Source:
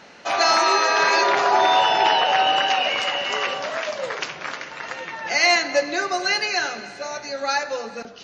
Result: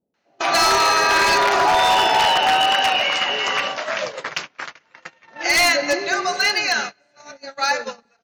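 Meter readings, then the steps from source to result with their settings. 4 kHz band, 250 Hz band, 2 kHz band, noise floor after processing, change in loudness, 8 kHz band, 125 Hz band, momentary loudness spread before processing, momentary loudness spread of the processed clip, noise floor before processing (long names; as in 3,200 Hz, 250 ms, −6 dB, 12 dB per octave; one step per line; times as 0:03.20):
+3.0 dB, +2.0 dB, +2.5 dB, −63 dBFS, +2.5 dB, +4.0 dB, +6.0 dB, 14 LU, 13 LU, −40 dBFS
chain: multiband delay without the direct sound lows, highs 140 ms, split 530 Hz
wave folding −13.5 dBFS
noise gate −29 dBFS, range −28 dB
level +3.5 dB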